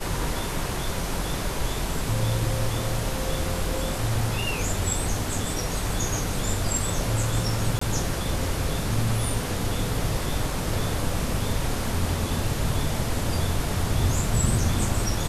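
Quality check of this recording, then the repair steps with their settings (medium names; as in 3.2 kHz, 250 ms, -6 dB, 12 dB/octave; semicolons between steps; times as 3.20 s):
7.79–7.81 s: dropout 24 ms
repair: interpolate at 7.79 s, 24 ms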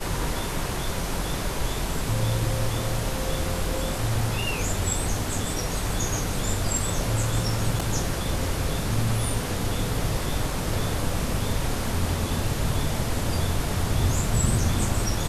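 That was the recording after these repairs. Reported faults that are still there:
nothing left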